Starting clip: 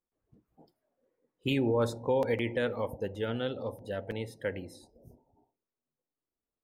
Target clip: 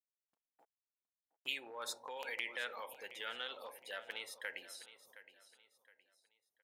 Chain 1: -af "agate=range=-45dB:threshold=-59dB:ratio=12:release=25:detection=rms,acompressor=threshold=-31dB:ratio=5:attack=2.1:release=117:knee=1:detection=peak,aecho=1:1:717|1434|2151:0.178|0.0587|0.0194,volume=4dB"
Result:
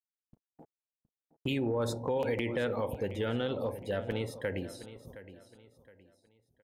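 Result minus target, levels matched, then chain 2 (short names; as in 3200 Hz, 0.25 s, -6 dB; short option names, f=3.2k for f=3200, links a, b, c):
1000 Hz band -2.5 dB
-af "agate=range=-45dB:threshold=-59dB:ratio=12:release=25:detection=rms,acompressor=threshold=-31dB:ratio=5:attack=2.1:release=117:knee=1:detection=peak,highpass=1.4k,aecho=1:1:717|1434|2151:0.178|0.0587|0.0194,volume=4dB"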